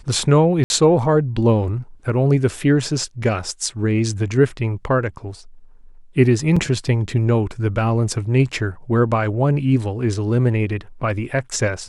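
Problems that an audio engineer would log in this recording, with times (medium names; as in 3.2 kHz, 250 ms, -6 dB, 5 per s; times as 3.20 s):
0.64–0.70 s: dropout 61 ms
6.56–6.57 s: dropout 5.2 ms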